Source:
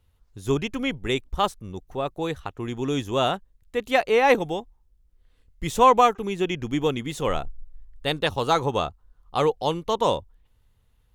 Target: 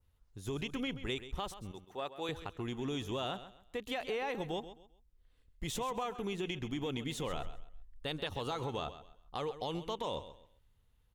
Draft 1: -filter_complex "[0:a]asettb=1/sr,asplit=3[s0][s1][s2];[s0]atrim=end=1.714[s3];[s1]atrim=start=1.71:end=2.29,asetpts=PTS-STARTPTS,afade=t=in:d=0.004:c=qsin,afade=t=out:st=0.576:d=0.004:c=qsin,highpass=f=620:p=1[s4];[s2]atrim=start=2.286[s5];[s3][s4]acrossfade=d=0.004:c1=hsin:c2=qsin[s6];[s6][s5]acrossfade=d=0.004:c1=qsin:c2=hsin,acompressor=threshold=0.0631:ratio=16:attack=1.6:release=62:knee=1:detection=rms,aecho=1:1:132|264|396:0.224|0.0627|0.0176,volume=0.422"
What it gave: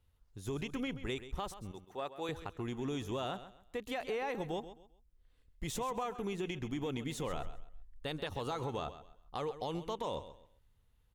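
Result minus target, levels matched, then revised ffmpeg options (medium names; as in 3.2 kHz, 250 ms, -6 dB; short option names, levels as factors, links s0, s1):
4 kHz band -3.5 dB
-filter_complex "[0:a]asettb=1/sr,asplit=3[s0][s1][s2];[s0]atrim=end=1.714[s3];[s1]atrim=start=1.71:end=2.29,asetpts=PTS-STARTPTS,afade=t=in:d=0.004:c=qsin,afade=t=out:st=0.576:d=0.004:c=qsin,highpass=f=620:p=1[s4];[s2]atrim=start=2.286[s5];[s3][s4]acrossfade=d=0.004:c1=hsin:c2=qsin[s6];[s6][s5]acrossfade=d=0.004:c1=qsin:c2=hsin,acompressor=threshold=0.0631:ratio=16:attack=1.6:release=62:knee=1:detection=rms,adynamicequalizer=threshold=0.00224:dfrequency=3200:dqfactor=2:tfrequency=3200:tqfactor=2:attack=5:release=100:ratio=0.438:range=2.5:mode=boostabove:tftype=bell,aecho=1:1:132|264|396:0.224|0.0627|0.0176,volume=0.422"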